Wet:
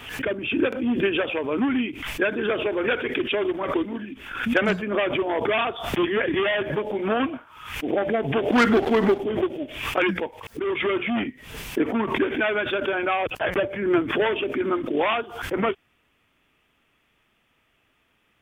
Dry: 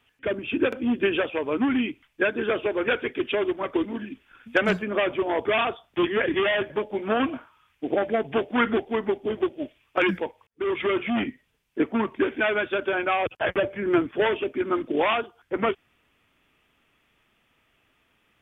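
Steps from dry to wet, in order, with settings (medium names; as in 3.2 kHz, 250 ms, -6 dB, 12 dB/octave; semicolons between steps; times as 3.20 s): 8.52–9.19 s: waveshaping leveller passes 2; swell ahead of each attack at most 71 dB/s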